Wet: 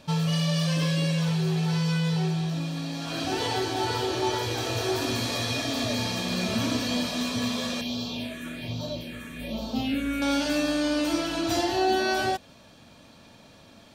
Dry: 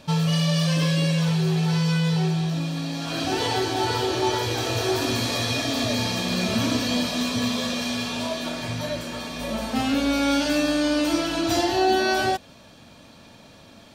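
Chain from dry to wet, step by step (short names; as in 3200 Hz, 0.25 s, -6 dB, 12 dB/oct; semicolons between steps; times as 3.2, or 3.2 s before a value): 7.81–10.22 phaser stages 4, 1.2 Hz, lowest notch 770–1900 Hz; gain -3.5 dB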